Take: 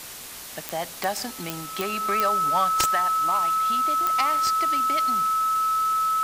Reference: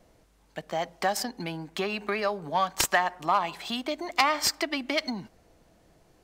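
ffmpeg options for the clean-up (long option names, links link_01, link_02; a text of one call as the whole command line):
ffmpeg -i in.wav -af "adeclick=threshold=4,bandreject=frequency=1300:width=30,afwtdn=0.013,asetnsamples=nb_out_samples=441:pad=0,asendcmd='2.88 volume volume 5.5dB',volume=0dB" out.wav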